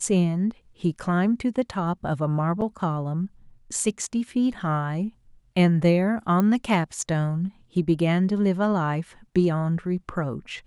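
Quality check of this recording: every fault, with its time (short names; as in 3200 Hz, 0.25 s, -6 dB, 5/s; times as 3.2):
2.61–2.62 gap 7.9 ms
6.4 pop -12 dBFS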